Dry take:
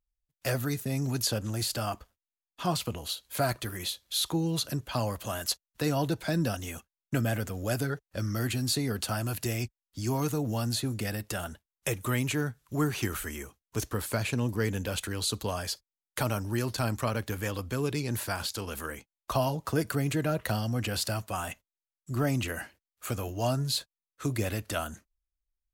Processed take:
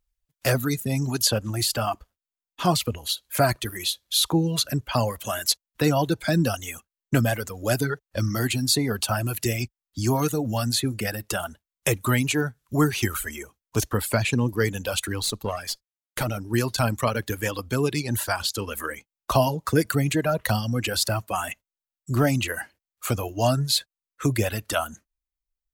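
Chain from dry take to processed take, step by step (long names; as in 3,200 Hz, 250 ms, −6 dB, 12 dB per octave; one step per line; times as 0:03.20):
0:15.22–0:16.54: tube saturation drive 25 dB, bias 0.7
reverb reduction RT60 1.8 s
level +8 dB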